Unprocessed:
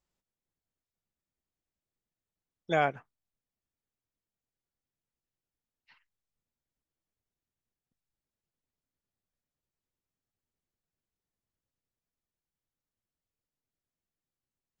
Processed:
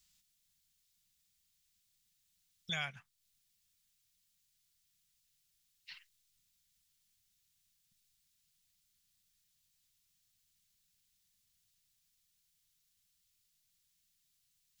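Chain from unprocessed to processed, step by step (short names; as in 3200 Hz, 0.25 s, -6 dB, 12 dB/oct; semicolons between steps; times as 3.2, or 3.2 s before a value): EQ curve 200 Hz 0 dB, 310 Hz -25 dB, 3700 Hz +14 dB; compressor 2:1, threshold -51 dBFS, peak gain reduction 14.5 dB; gain +4.5 dB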